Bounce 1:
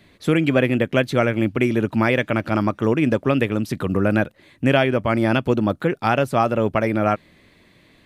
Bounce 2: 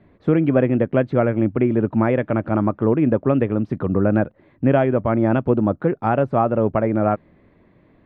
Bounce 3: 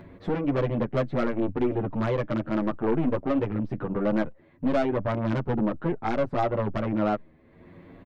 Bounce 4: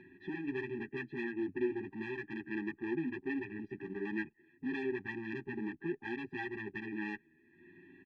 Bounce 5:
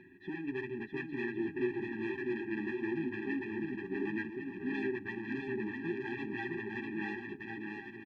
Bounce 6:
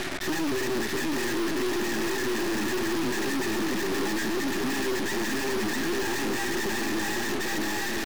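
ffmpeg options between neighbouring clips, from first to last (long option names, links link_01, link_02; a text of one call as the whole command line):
ffmpeg -i in.wav -af "lowpass=1100,volume=1.5dB" out.wav
ffmpeg -i in.wav -filter_complex "[0:a]acompressor=mode=upward:threshold=-31dB:ratio=2.5,aeval=exprs='(tanh(7.08*val(0)+0.5)-tanh(0.5))/7.08':channel_layout=same,asplit=2[link_01][link_02];[link_02]adelay=8.6,afreqshift=0.64[link_03];[link_01][link_03]amix=inputs=2:normalize=1" out.wav
ffmpeg -i in.wav -filter_complex "[0:a]aeval=exprs='clip(val(0),-1,0.0211)':channel_layout=same,asplit=3[link_01][link_02][link_03];[link_01]bandpass=frequency=530:width_type=q:width=8,volume=0dB[link_04];[link_02]bandpass=frequency=1840:width_type=q:width=8,volume=-6dB[link_05];[link_03]bandpass=frequency=2480:width_type=q:width=8,volume=-9dB[link_06];[link_04][link_05][link_06]amix=inputs=3:normalize=0,afftfilt=real='re*eq(mod(floor(b*sr/1024/390),2),0)':imag='im*eq(mod(floor(b*sr/1024/390),2),0)':win_size=1024:overlap=0.75,volume=10.5dB" out.wav
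ffmpeg -i in.wav -af "aecho=1:1:650|1105|1424|1646|1803:0.631|0.398|0.251|0.158|0.1" out.wav
ffmpeg -i in.wav -filter_complex "[0:a]asplit=2[link_01][link_02];[link_02]highpass=frequency=720:poles=1,volume=38dB,asoftclip=type=tanh:threshold=-21.5dB[link_03];[link_01][link_03]amix=inputs=2:normalize=0,lowpass=frequency=1100:poles=1,volume=-6dB,acrusher=bits=5:mix=0:aa=0.5,aeval=exprs='0.0668*(cos(1*acos(clip(val(0)/0.0668,-1,1)))-cos(1*PI/2))+0.0188*(cos(7*acos(clip(val(0)/0.0668,-1,1)))-cos(7*PI/2))+0.0168*(cos(8*acos(clip(val(0)/0.0668,-1,1)))-cos(8*PI/2))':channel_layout=same" out.wav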